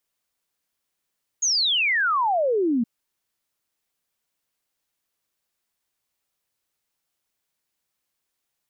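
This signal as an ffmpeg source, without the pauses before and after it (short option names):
-f lavfi -i "aevalsrc='0.119*clip(min(t,1.42-t)/0.01,0,1)*sin(2*PI*6800*1.42/log(220/6800)*(exp(log(220/6800)*t/1.42)-1))':d=1.42:s=44100"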